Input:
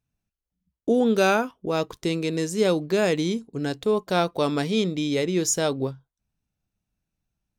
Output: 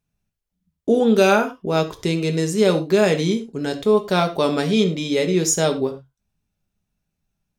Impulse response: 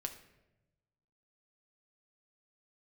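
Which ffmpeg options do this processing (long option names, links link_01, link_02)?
-filter_complex "[1:a]atrim=start_sample=2205,atrim=end_sample=6174,asetrate=52920,aresample=44100[link_01];[0:a][link_01]afir=irnorm=-1:irlink=0,volume=7.5dB"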